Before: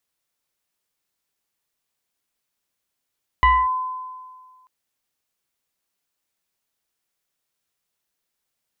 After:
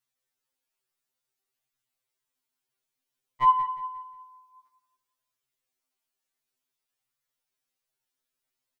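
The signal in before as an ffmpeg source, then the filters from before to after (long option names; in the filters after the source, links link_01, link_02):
-f lavfi -i "aevalsrc='0.316*pow(10,-3*t/1.74)*sin(2*PI*1020*t+0.92*clip(1-t/0.25,0,1)*sin(2*PI*0.94*1020*t))':duration=1.24:sample_rate=44100"
-af "flanger=delay=8.3:depth=5:regen=49:speed=0.56:shape=triangular,aecho=1:1:178|356|534|712:0.237|0.083|0.029|0.0102,afftfilt=real='re*2.45*eq(mod(b,6),0)':imag='im*2.45*eq(mod(b,6),0)':win_size=2048:overlap=0.75"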